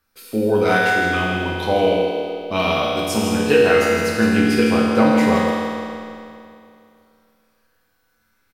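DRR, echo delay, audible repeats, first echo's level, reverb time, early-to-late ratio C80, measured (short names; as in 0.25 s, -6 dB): -6.0 dB, 0.162 s, 1, -6.0 dB, 2.6 s, -1.5 dB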